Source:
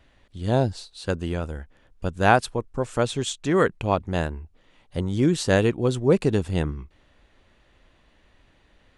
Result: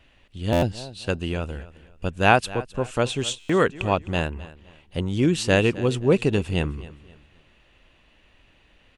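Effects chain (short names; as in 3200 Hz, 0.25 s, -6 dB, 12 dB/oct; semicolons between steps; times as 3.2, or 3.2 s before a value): bell 2700 Hz +9.5 dB 0.42 oct; on a send: feedback echo 0.26 s, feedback 32%, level -18 dB; on the sum: stuck buffer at 0.52/3.39, samples 512, times 8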